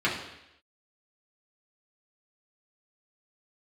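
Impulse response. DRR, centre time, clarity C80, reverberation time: -6.5 dB, 37 ms, 8.5 dB, 0.85 s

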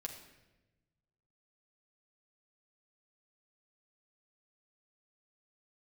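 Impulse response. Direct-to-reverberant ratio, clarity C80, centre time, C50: 1.5 dB, 9.5 dB, 24 ms, 7.5 dB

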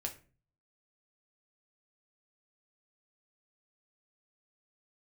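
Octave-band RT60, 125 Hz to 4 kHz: 0.70 s, 0.55 s, 0.45 s, 0.35 s, 0.35 s, 0.25 s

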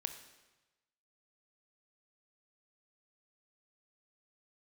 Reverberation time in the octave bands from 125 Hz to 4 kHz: 1.2 s, 1.0 s, 1.1 s, 1.1 s, 1.1 s, 1.0 s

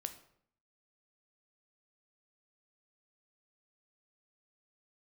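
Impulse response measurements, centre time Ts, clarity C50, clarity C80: 9 ms, 12.0 dB, 15.5 dB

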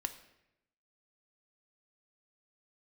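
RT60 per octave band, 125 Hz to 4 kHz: 1.1 s, 1.0 s, 0.95 s, 0.80 s, 0.85 s, 0.70 s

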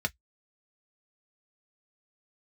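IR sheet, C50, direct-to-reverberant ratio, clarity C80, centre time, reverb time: 36.5 dB, 4.5 dB, 55.0 dB, 3 ms, no single decay rate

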